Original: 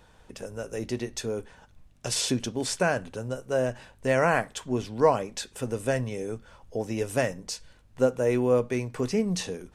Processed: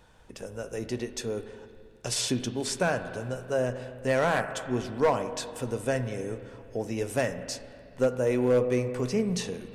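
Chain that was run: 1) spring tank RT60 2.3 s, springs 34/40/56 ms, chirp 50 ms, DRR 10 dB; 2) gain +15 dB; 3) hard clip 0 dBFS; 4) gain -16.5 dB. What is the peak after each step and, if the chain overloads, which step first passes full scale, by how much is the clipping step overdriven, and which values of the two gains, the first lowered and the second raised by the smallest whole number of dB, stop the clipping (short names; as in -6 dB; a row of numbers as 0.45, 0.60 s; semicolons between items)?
-8.0, +7.0, 0.0, -16.5 dBFS; step 2, 7.0 dB; step 2 +8 dB, step 4 -9.5 dB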